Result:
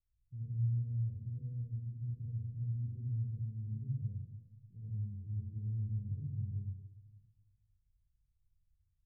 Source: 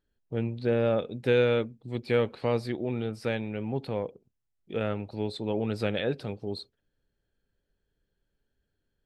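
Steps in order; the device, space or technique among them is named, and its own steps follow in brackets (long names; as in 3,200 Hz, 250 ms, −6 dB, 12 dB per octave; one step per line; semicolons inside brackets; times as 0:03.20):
club heard from the street (brickwall limiter −20 dBFS, peak gain reduction 7.5 dB; low-pass filter 120 Hz 24 dB per octave; convolution reverb RT60 1.2 s, pre-delay 69 ms, DRR −8 dB)
level −6 dB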